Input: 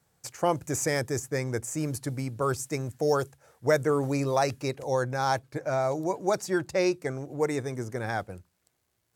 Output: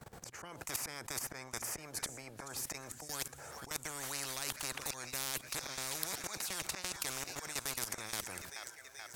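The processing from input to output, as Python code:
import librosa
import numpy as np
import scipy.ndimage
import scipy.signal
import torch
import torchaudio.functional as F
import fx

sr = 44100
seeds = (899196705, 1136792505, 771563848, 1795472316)

y = fx.high_shelf(x, sr, hz=2300.0, db=fx.steps((0.0, -9.5), (2.64, -3.5), (4.85, 5.0)))
y = fx.auto_swell(y, sr, attack_ms=392.0)
y = fx.level_steps(y, sr, step_db=18)
y = fx.echo_wet_highpass(y, sr, ms=430, feedback_pct=67, hz=1700.0, wet_db=-21.5)
y = fx.spectral_comp(y, sr, ratio=10.0)
y = F.gain(torch.from_numpy(y), 9.5).numpy()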